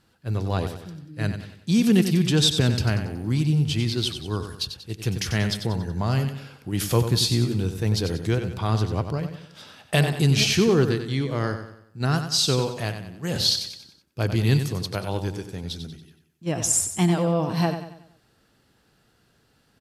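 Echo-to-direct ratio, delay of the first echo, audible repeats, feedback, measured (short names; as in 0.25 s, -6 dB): -8.0 dB, 93 ms, 4, 43%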